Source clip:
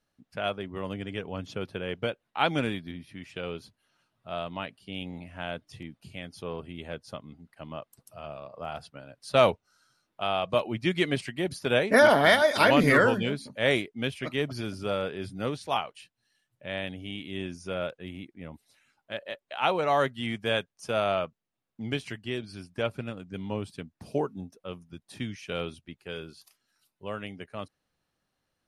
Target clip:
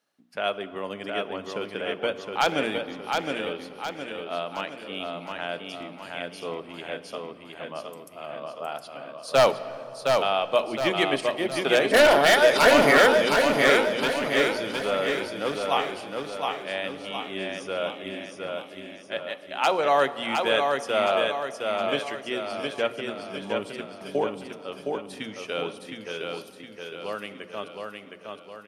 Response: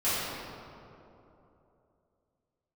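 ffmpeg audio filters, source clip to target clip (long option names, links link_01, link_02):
-filter_complex "[0:a]highpass=280,bandreject=frequency=60:width_type=h:width=6,bandreject=frequency=120:width_type=h:width=6,bandreject=frequency=180:width_type=h:width=6,bandreject=frequency=240:width_type=h:width=6,bandreject=frequency=300:width_type=h:width=6,bandreject=frequency=360:width_type=h:width=6,aeval=exprs='0.2*(abs(mod(val(0)/0.2+3,4)-2)-1)':channel_layout=same,aecho=1:1:714|1428|2142|2856|3570|4284:0.631|0.309|0.151|0.0742|0.0364|0.0178,asplit=2[link_01][link_02];[1:a]atrim=start_sample=2205,adelay=30[link_03];[link_02][link_03]afir=irnorm=-1:irlink=0,volume=-26.5dB[link_04];[link_01][link_04]amix=inputs=2:normalize=0,volume=3.5dB"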